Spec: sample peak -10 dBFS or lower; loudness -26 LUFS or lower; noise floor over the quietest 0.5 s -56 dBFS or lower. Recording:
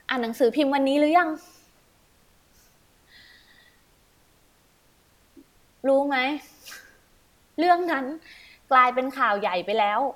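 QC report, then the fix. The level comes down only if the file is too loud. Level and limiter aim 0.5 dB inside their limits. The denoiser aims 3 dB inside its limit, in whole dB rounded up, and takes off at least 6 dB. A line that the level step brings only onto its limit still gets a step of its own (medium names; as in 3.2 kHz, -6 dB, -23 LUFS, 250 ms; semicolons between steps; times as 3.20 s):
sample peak -4.5 dBFS: fail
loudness -23.0 LUFS: fail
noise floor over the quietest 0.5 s -61 dBFS: pass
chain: trim -3.5 dB; peak limiter -10.5 dBFS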